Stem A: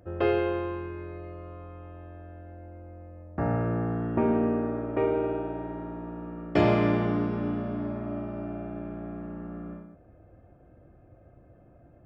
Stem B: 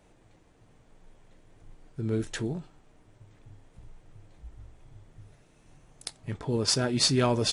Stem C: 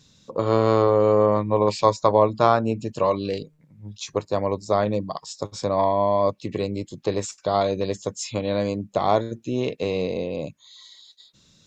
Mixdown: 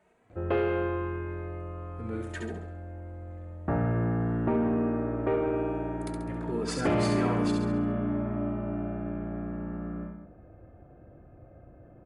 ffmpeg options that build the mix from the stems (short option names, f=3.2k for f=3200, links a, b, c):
-filter_complex "[0:a]lowpass=2.8k,asoftclip=type=tanh:threshold=-18.5dB,adelay=300,volume=2.5dB,asplit=2[a][b];[b]volume=-10dB[c];[1:a]highpass=f=260:p=1,highshelf=f=2.7k:t=q:w=1.5:g=-7,asplit=2[d][e];[e]adelay=2.8,afreqshift=1.7[f];[d][f]amix=inputs=2:normalize=1,volume=0dB,asplit=2[g][h];[h]volume=-5dB[i];[c][i]amix=inputs=2:normalize=0,aecho=0:1:68|136|204|272|340|408:1|0.46|0.212|0.0973|0.0448|0.0206[j];[a][g][j]amix=inputs=3:normalize=0,equalizer=f=5.5k:w=6.1:g=-8,acompressor=threshold=-24dB:ratio=2.5"